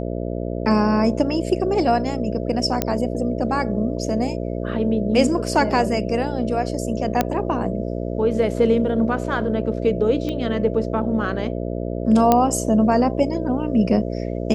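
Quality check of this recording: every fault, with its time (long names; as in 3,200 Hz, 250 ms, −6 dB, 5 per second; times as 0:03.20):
mains buzz 60 Hz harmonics 11 −26 dBFS
0:02.82: click −4 dBFS
0:07.21: click −4 dBFS
0:10.29: click −15 dBFS
0:12.32: click −3 dBFS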